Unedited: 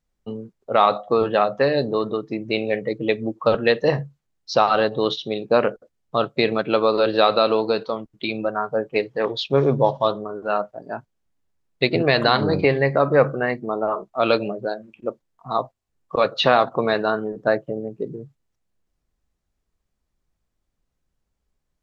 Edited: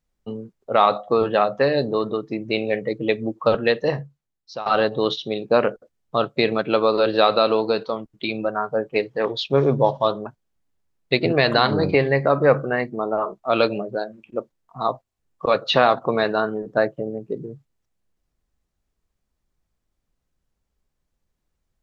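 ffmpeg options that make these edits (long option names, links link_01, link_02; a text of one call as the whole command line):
ffmpeg -i in.wav -filter_complex "[0:a]asplit=3[link_01][link_02][link_03];[link_01]atrim=end=4.66,asetpts=PTS-STARTPTS,afade=type=out:start_time=3.51:duration=1.15:silence=0.149624[link_04];[link_02]atrim=start=4.66:end=10.262,asetpts=PTS-STARTPTS,afade=type=in:duration=0.004:curve=hsin:silence=0.149624[link_05];[link_03]atrim=start=10.958[link_06];[link_04][link_05]concat=n=2:v=0:a=1[link_07];[link_07][link_06]acrossfade=duration=0.004:curve1=hsin:curve2=hsin" out.wav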